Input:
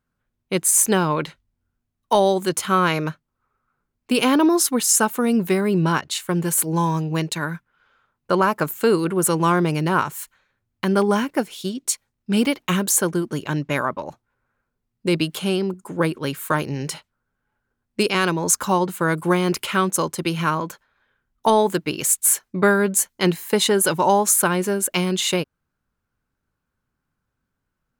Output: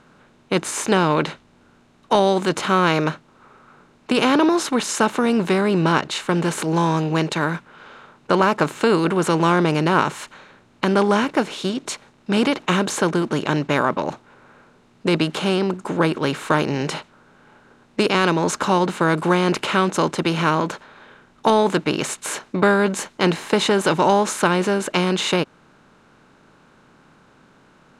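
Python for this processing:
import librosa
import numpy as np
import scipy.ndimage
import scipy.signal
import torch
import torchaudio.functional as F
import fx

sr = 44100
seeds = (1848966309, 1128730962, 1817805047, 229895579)

y = fx.bin_compress(x, sr, power=0.6)
y = scipy.signal.sosfilt(scipy.signal.butter(2, 4600.0, 'lowpass', fs=sr, output='sos'), y)
y = F.gain(torch.from_numpy(y), -2.0).numpy()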